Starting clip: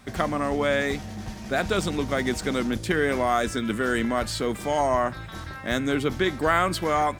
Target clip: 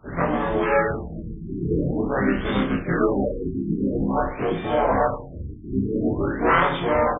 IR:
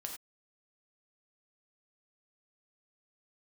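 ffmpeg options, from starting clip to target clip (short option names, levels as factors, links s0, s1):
-filter_complex "[0:a]afftfilt=real='re':imag='-im':win_size=2048:overlap=0.75,asplit=4[s0][s1][s2][s3];[s1]asetrate=33038,aresample=44100,atempo=1.33484,volume=0.562[s4];[s2]asetrate=35002,aresample=44100,atempo=1.25992,volume=0.708[s5];[s3]asetrate=66075,aresample=44100,atempo=0.66742,volume=0.398[s6];[s0][s4][s5][s6]amix=inputs=4:normalize=0,aexciter=amount=6.6:drive=9:freq=4500,asplit=2[s7][s8];[s8]aecho=0:1:30|64.5|104.2|149.8|202.3:0.631|0.398|0.251|0.158|0.1[s9];[s7][s9]amix=inputs=2:normalize=0,afftfilt=real='re*lt(b*sr/1024,400*pow(3700/400,0.5+0.5*sin(2*PI*0.48*pts/sr)))':imag='im*lt(b*sr/1024,400*pow(3700/400,0.5+0.5*sin(2*PI*0.48*pts/sr)))':win_size=1024:overlap=0.75,volume=1.33"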